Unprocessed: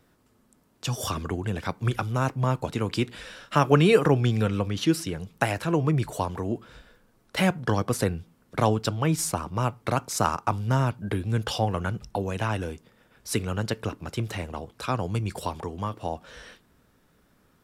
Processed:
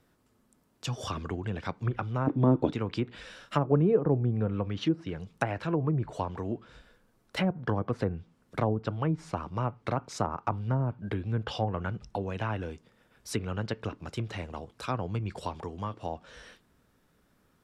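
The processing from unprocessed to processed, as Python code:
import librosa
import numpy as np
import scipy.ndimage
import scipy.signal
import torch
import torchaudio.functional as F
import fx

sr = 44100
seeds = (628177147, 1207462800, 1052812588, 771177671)

y = fx.env_lowpass_down(x, sr, base_hz=660.0, full_db=-18.0)
y = fx.small_body(y, sr, hz=(300.0, 3500.0), ring_ms=25, db=18, at=(2.27, 2.73))
y = y * 10.0 ** (-4.5 / 20.0)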